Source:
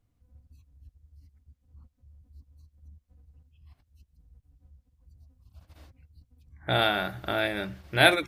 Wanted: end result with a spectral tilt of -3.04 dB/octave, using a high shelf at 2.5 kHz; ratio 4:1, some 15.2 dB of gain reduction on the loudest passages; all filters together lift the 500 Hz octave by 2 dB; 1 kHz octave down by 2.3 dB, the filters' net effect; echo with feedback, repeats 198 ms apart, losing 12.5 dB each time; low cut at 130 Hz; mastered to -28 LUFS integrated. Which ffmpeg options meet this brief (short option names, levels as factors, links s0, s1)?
-af "highpass=130,equalizer=f=500:t=o:g=6,equalizer=f=1000:t=o:g=-7,highshelf=f=2500:g=-3,acompressor=threshold=0.0224:ratio=4,aecho=1:1:198|396|594:0.237|0.0569|0.0137,volume=2.82"